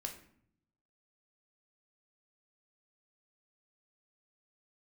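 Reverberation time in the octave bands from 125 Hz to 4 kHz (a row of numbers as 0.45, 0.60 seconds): 1.1, 0.95, 0.65, 0.60, 0.55, 0.40 seconds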